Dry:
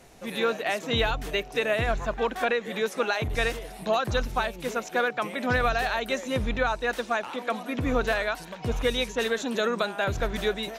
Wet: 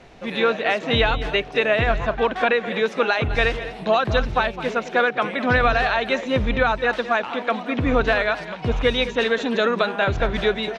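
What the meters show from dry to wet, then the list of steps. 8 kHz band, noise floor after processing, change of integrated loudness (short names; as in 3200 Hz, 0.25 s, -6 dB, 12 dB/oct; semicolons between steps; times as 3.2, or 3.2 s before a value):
n/a, -36 dBFS, +6.5 dB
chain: Chebyshev low-pass 3300 Hz, order 2; outdoor echo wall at 36 m, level -13 dB; gain +7 dB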